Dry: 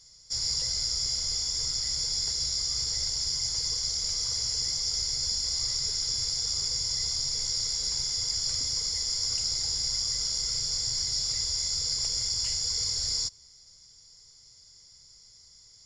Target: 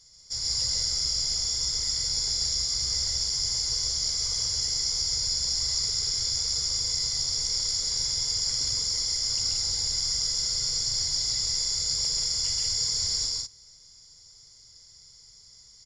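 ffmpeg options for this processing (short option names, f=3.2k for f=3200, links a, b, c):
-af "bandreject=f=2.6k:w=29,aecho=1:1:134.1|180.8:0.794|0.631,volume=-1dB"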